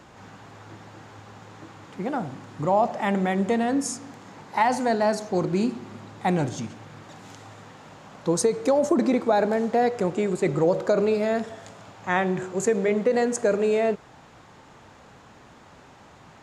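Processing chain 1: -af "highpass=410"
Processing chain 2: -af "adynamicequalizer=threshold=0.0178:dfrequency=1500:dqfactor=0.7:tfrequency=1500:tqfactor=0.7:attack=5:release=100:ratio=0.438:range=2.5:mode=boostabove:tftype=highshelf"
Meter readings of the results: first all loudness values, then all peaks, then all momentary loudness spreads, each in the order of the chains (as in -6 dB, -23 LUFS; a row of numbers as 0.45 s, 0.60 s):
-26.5 LUFS, -23.5 LUFS; -10.0 dBFS, -7.5 dBFS; 17 LU, 13 LU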